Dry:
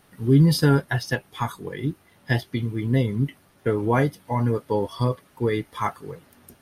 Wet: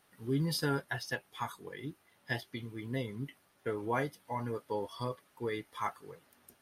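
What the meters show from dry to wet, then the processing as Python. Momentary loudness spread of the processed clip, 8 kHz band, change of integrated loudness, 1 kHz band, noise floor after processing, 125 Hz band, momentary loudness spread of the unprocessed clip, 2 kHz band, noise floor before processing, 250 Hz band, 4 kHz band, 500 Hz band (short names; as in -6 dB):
12 LU, n/a, -13.5 dB, -9.5 dB, -69 dBFS, -17.5 dB, 13 LU, -9.0 dB, -58 dBFS, -15.0 dB, -8.5 dB, -12.0 dB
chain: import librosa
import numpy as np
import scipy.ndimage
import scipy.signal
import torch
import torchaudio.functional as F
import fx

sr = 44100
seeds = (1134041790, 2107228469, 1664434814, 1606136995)

y = fx.low_shelf(x, sr, hz=310.0, db=-11.0)
y = F.gain(torch.from_numpy(y), -8.5).numpy()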